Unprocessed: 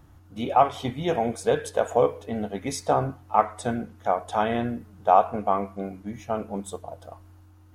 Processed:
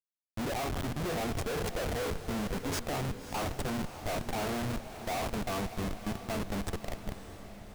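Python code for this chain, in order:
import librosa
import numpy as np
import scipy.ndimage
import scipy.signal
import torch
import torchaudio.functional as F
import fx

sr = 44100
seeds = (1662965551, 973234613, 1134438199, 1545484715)

y = fx.schmitt(x, sr, flips_db=-32.5)
y = fx.echo_diffused(y, sr, ms=591, feedback_pct=54, wet_db=-11.0)
y = y * 10.0 ** (-7.0 / 20.0)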